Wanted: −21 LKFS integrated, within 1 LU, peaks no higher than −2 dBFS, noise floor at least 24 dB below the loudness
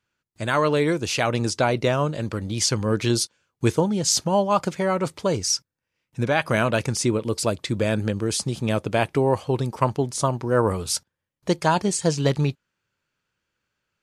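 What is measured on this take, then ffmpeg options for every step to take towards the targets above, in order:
integrated loudness −23.0 LKFS; sample peak −5.5 dBFS; target loudness −21.0 LKFS
→ -af "volume=2dB"

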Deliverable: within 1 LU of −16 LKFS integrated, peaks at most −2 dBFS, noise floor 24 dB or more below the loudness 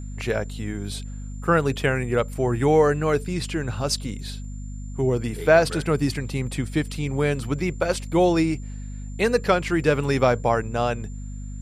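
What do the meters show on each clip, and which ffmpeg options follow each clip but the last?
mains hum 50 Hz; hum harmonics up to 250 Hz; level of the hum −31 dBFS; interfering tone 7,200 Hz; level of the tone −51 dBFS; integrated loudness −23.0 LKFS; sample peak −5.0 dBFS; target loudness −16.0 LKFS
→ -af "bandreject=frequency=50:width_type=h:width=6,bandreject=frequency=100:width_type=h:width=6,bandreject=frequency=150:width_type=h:width=6,bandreject=frequency=200:width_type=h:width=6,bandreject=frequency=250:width_type=h:width=6"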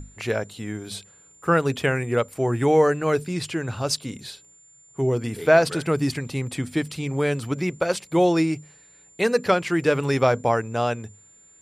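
mains hum none found; interfering tone 7,200 Hz; level of the tone −51 dBFS
→ -af "bandreject=frequency=7200:width=30"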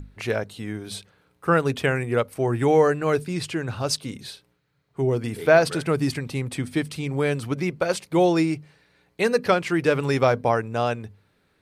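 interfering tone none found; integrated loudness −23.5 LKFS; sample peak −5.0 dBFS; target loudness −16.0 LKFS
→ -af "volume=7.5dB,alimiter=limit=-2dB:level=0:latency=1"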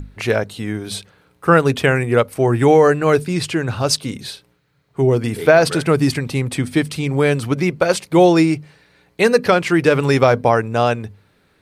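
integrated loudness −16.5 LKFS; sample peak −2.0 dBFS; background noise floor −60 dBFS

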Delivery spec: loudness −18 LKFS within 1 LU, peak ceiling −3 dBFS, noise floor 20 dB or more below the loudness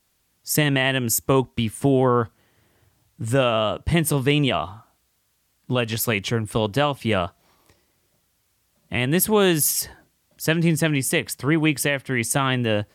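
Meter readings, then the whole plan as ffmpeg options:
integrated loudness −21.5 LKFS; sample peak −8.0 dBFS; target loudness −18.0 LKFS
→ -af "volume=3.5dB"

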